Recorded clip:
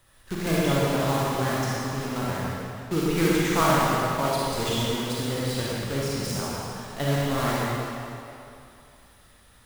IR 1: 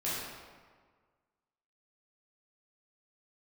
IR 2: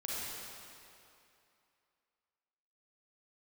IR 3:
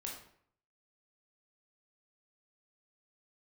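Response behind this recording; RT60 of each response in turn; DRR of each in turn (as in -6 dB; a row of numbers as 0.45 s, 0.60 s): 2; 1.6 s, 2.7 s, 0.60 s; -9.5 dB, -7.0 dB, -2.0 dB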